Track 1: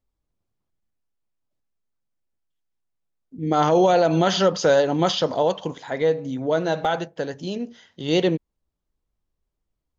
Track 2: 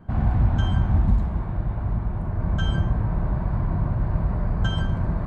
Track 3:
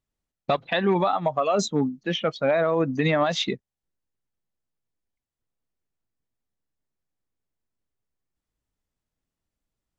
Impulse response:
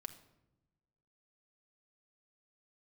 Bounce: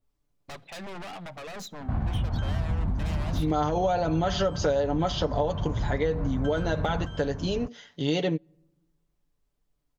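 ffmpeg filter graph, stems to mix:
-filter_complex "[0:a]aecho=1:1:6.9:0.62,adynamicequalizer=threshold=0.0316:dfrequency=1700:dqfactor=0.7:tfrequency=1700:tqfactor=0.7:attack=5:release=100:ratio=0.375:range=2.5:mode=cutabove:tftype=highshelf,volume=1dB,asplit=2[link_01][link_02];[link_02]volume=-23.5dB[link_03];[1:a]alimiter=limit=-19dB:level=0:latency=1:release=365,adelay=1800,volume=2dB,asplit=2[link_04][link_05];[link_05]volume=-9dB[link_06];[2:a]aeval=exprs='0.266*(cos(1*acos(clip(val(0)/0.266,-1,1)))-cos(1*PI/2))+0.119*(cos(4*acos(clip(val(0)/0.266,-1,1)))-cos(4*PI/2))+0.119*(cos(5*acos(clip(val(0)/0.266,-1,1)))-cos(5*PI/2))+0.0188*(cos(7*acos(clip(val(0)/0.266,-1,1)))-cos(7*PI/2))':channel_layout=same,asoftclip=type=tanh:threshold=-23dB,volume=-16.5dB,asplit=2[link_07][link_08];[link_08]volume=-6dB[link_09];[3:a]atrim=start_sample=2205[link_10];[link_03][link_09]amix=inputs=2:normalize=0[link_11];[link_11][link_10]afir=irnorm=-1:irlink=0[link_12];[link_06]aecho=0:1:617:1[link_13];[link_01][link_04][link_07][link_12][link_13]amix=inputs=5:normalize=0,acompressor=threshold=-23dB:ratio=5"

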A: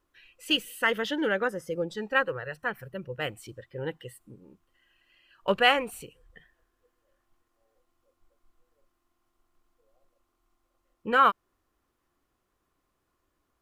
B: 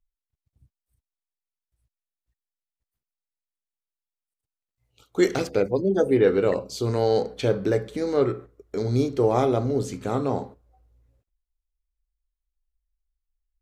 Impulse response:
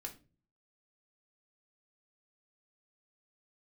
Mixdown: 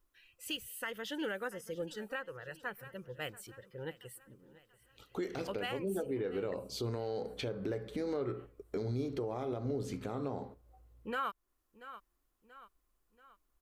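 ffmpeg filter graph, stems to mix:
-filter_complex "[0:a]highshelf=frequency=6600:gain=12,volume=-9dB,asplit=2[link_01][link_02];[link_02]volume=-20.5dB[link_03];[1:a]acompressor=threshold=-22dB:ratio=6,equalizer=frequency=7100:width_type=o:width=0.8:gain=-7,volume=-1dB[link_04];[link_03]aecho=0:1:683|1366|2049|2732|3415|4098|4781:1|0.47|0.221|0.104|0.0488|0.0229|0.0108[link_05];[link_01][link_04][link_05]amix=inputs=3:normalize=0,alimiter=level_in=3.5dB:limit=-24dB:level=0:latency=1:release=353,volume=-3.5dB"

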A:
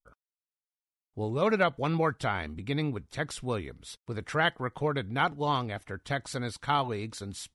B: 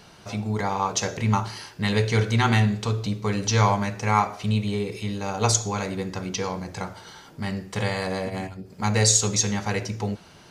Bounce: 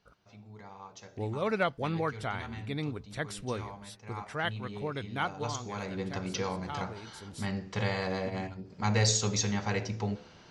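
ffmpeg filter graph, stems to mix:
ffmpeg -i stem1.wav -i stem2.wav -filter_complex "[0:a]highshelf=frequency=4800:gain=-7.5,volume=-2.5dB[link_01];[1:a]lowpass=frequency=6500:width=0.5412,lowpass=frequency=6500:width=1.3066,aemphasis=mode=reproduction:type=50fm,bandreject=frequency=72.02:width_type=h:width=4,bandreject=frequency=144.04:width_type=h:width=4,bandreject=frequency=216.06:width_type=h:width=4,bandreject=frequency=288.08:width_type=h:width=4,bandreject=frequency=360.1:width_type=h:width=4,bandreject=frequency=432.12:width_type=h:width=4,bandreject=frequency=504.14:width_type=h:width=4,bandreject=frequency=576.16:width_type=h:width=4,bandreject=frequency=648.18:width_type=h:width=4,bandreject=frequency=720.2:width_type=h:width=4,bandreject=frequency=792.22:width_type=h:width=4,bandreject=frequency=864.24:width_type=h:width=4,bandreject=frequency=936.26:width_type=h:width=4,bandreject=frequency=1008.28:width_type=h:width=4,volume=-5dB,afade=type=in:start_time=4.13:duration=0.47:silence=0.421697,afade=type=in:start_time=5.56:duration=0.56:silence=0.298538,asplit=2[link_02][link_03];[link_03]apad=whole_len=332772[link_04];[link_01][link_04]sidechaincompress=threshold=-41dB:ratio=8:attack=16:release=979[link_05];[link_05][link_02]amix=inputs=2:normalize=0,highshelf=frequency=5100:gain=9" out.wav

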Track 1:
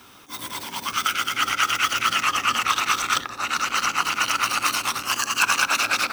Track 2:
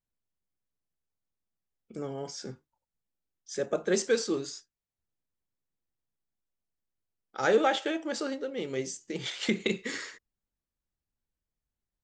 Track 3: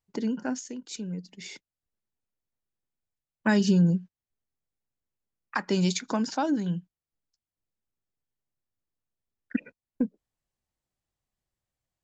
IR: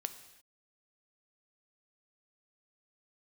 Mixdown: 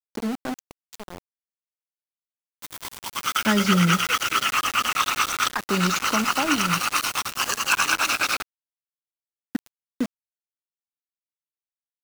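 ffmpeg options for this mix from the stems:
-filter_complex "[0:a]acrusher=bits=5:mix=0:aa=0.000001,adelay=2300,volume=-1dB[link_01];[1:a]acompressor=threshold=-29dB:ratio=12,asplit=2[link_02][link_03];[link_03]adelay=8.3,afreqshift=0.3[link_04];[link_02][link_04]amix=inputs=2:normalize=1,volume=-3dB[link_05];[2:a]volume=-1.5dB,asplit=2[link_06][link_07];[link_07]volume=-8dB[link_08];[3:a]atrim=start_sample=2205[link_09];[link_08][link_09]afir=irnorm=-1:irlink=0[link_10];[link_01][link_05][link_06][link_10]amix=inputs=4:normalize=0,aeval=exprs='val(0)*gte(abs(val(0)),0.0398)':channel_layout=same"

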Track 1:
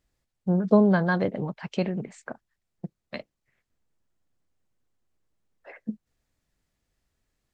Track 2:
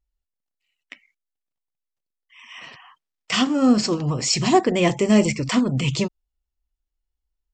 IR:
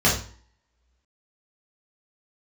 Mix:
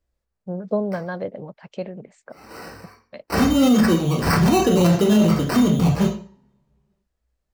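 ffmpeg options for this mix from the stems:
-filter_complex "[0:a]equalizer=frequency=560:width_type=o:width=0.68:gain=8.5,volume=-7.5dB,asplit=2[link_01][link_02];[1:a]acrusher=samples=13:mix=1:aa=0.000001,volume=-2dB,asplit=2[link_03][link_04];[link_04]volume=-16dB[link_05];[link_02]apad=whole_len=332436[link_06];[link_03][link_06]sidechaincompress=threshold=-45dB:ratio=8:attack=46:release=356[link_07];[2:a]atrim=start_sample=2205[link_08];[link_05][link_08]afir=irnorm=-1:irlink=0[link_09];[link_01][link_07][link_09]amix=inputs=3:normalize=0,alimiter=limit=-8.5dB:level=0:latency=1:release=15"

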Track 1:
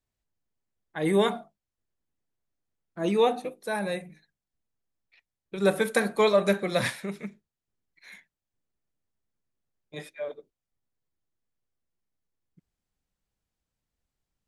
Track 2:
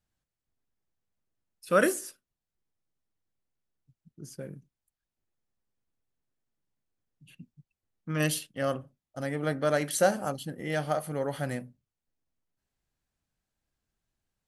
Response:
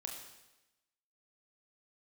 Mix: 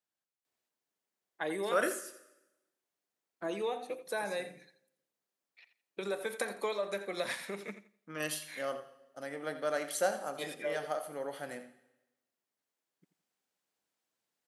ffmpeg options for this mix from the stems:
-filter_complex "[0:a]acompressor=threshold=-33dB:ratio=6,adelay=450,volume=1dB,asplit=3[link_01][link_02][link_03];[link_02]volume=-21.5dB[link_04];[link_03]volume=-12.5dB[link_05];[1:a]volume=-9dB,asplit=3[link_06][link_07][link_08];[link_07]volume=-4.5dB[link_09];[link_08]volume=-11dB[link_10];[2:a]atrim=start_sample=2205[link_11];[link_04][link_09]amix=inputs=2:normalize=0[link_12];[link_12][link_11]afir=irnorm=-1:irlink=0[link_13];[link_05][link_10]amix=inputs=2:normalize=0,aecho=0:1:85|170|255|340:1|0.22|0.0484|0.0106[link_14];[link_01][link_06][link_13][link_14]amix=inputs=4:normalize=0,highpass=350"

